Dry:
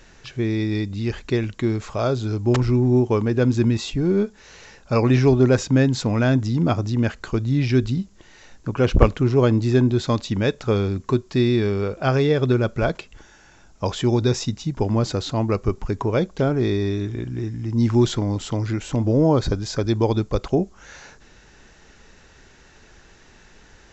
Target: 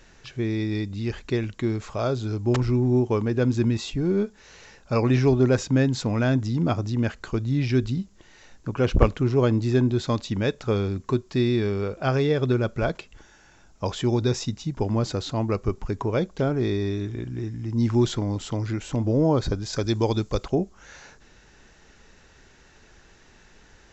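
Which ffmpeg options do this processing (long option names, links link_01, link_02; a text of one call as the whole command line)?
ffmpeg -i in.wav -filter_complex "[0:a]asettb=1/sr,asplit=3[link_01][link_02][link_03];[link_01]atrim=end=19.734[link_04];[link_02]atrim=start=19.73:end=20.44,asetpts=PTS-STARTPTS,afade=type=in:duration=0.004:curve=qsin,afade=type=out:start_time=0.706:duration=0.004:curve=qsin,highshelf=frequency=3200:gain=9[link_05];[link_03]atrim=start=20.436[link_06];[link_04][link_05]acrossfade=duration=0.004:curve1=hsin:curve2=qsin[link_07];[link_07][link_06]acrossfade=duration=0.004:curve1=qsin:curve2=hsin,volume=-3.5dB" out.wav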